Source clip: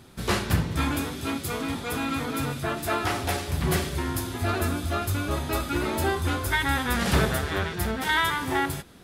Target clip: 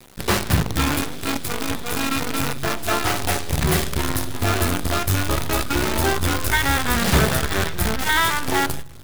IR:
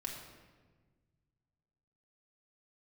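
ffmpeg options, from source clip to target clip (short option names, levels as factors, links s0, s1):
-filter_complex "[0:a]acrusher=bits=5:dc=4:mix=0:aa=0.000001,asplit=2[s0][s1];[s1]asubboost=boost=6:cutoff=160[s2];[1:a]atrim=start_sample=2205[s3];[s2][s3]afir=irnorm=-1:irlink=0,volume=0.0891[s4];[s0][s4]amix=inputs=2:normalize=0,volume=1.58"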